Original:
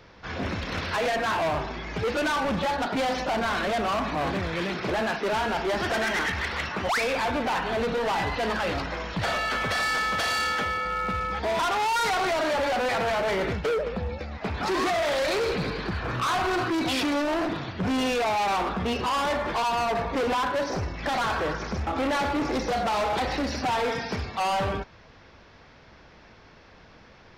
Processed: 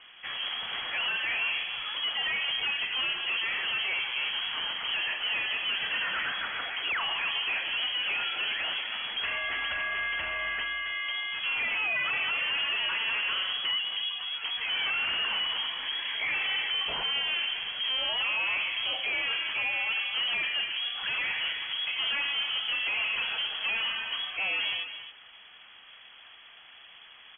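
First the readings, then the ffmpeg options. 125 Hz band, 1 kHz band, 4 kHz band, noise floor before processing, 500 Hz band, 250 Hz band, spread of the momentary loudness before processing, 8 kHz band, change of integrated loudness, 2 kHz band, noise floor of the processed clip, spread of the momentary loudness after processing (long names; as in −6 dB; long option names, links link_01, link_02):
below −20 dB, −13.5 dB, +6.5 dB, −52 dBFS, −21.0 dB, −25.5 dB, 6 LU, below −40 dB, −2.0 dB, +1.0 dB, −52 dBFS, 4 LU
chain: -af "alimiter=level_in=3.5dB:limit=-24dB:level=0:latency=1,volume=-3.5dB,aecho=1:1:275:0.299,lowpass=frequency=2900:width_type=q:width=0.5098,lowpass=frequency=2900:width_type=q:width=0.6013,lowpass=frequency=2900:width_type=q:width=0.9,lowpass=frequency=2900:width_type=q:width=2.563,afreqshift=-3400"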